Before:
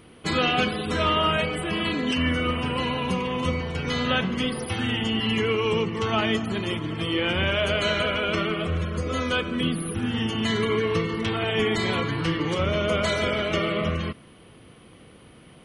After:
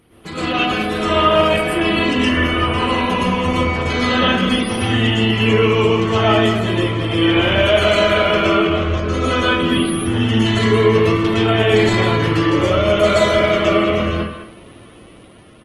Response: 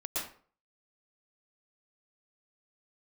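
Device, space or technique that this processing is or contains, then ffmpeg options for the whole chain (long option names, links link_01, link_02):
speakerphone in a meeting room: -filter_complex "[0:a]asettb=1/sr,asplit=3[link_01][link_02][link_03];[link_01]atrim=end=8.534[link_04];[link_02]atrim=start=8.53:end=9.07,asetpts=PTS-STARTPTS,afade=type=in:duration=0.004:curve=qsin,afade=type=out:start_time=0.536:duration=0.004:curve=qsin,lowpass=frequency=6500:width=0.5412,lowpass=frequency=6500:width=1.3066[link_05];[link_03]atrim=start=9.066[link_06];[link_04][link_05]acrossfade=duration=0.004:curve1=hsin:curve2=qsin[link_07];[link_07][link_06]acrossfade=duration=0.004:curve1=qsin:curve2=hsin,asplit=2[link_08][link_09];[link_09]adelay=63,lowpass=frequency=1600:poles=1,volume=-17dB,asplit=2[link_10][link_11];[link_11]adelay=63,lowpass=frequency=1600:poles=1,volume=0.4,asplit=2[link_12][link_13];[link_13]adelay=63,lowpass=frequency=1600:poles=1,volume=0.4[link_14];[link_08][link_10][link_12][link_14]amix=inputs=4:normalize=0[link_15];[1:a]atrim=start_sample=2205[link_16];[link_15][link_16]afir=irnorm=-1:irlink=0,asplit=2[link_17][link_18];[link_18]adelay=200,highpass=300,lowpass=3400,asoftclip=type=hard:threshold=-15.5dB,volume=-9dB[link_19];[link_17][link_19]amix=inputs=2:normalize=0,dynaudnorm=framelen=130:gausssize=17:maxgain=7dB" -ar 48000 -c:a libopus -b:a 20k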